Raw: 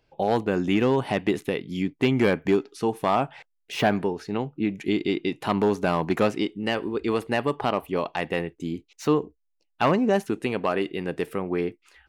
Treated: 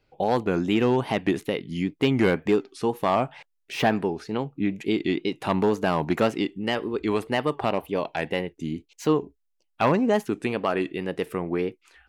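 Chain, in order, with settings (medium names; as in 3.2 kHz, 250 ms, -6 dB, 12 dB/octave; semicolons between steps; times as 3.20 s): 7.69–9.10 s: band-stop 1.2 kHz, Q 5.9; wow and flutter 110 cents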